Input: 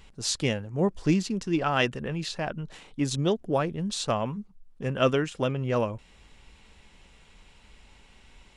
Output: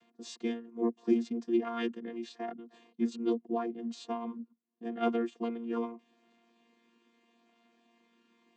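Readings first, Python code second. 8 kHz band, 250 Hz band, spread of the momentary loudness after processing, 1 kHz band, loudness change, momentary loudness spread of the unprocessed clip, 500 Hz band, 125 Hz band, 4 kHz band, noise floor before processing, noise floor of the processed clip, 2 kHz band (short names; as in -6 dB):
under -15 dB, -3.5 dB, 14 LU, -7.5 dB, -6.5 dB, 9 LU, -7.0 dB, under -20 dB, -16.0 dB, -57 dBFS, -74 dBFS, -14.0 dB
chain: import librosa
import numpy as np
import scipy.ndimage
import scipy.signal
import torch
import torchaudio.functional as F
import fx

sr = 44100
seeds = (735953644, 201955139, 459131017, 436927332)

y = fx.chord_vocoder(x, sr, chord='bare fifth', root=58)
y = y * librosa.db_to_amplitude(-5.5)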